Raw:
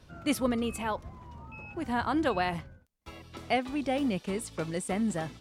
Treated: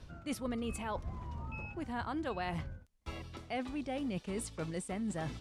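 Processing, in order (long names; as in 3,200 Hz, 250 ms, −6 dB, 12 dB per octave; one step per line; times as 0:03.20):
low-pass filter 11,000 Hz 12 dB per octave
low-shelf EQ 77 Hz +10.5 dB
reversed playback
downward compressor 4 to 1, threshold −38 dBFS, peak gain reduction 14 dB
reversed playback
level +1.5 dB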